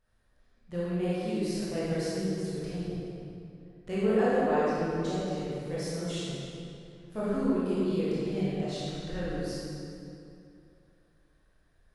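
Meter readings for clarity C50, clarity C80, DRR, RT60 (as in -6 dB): -5.0 dB, -2.5 dB, -10.5 dB, 2.7 s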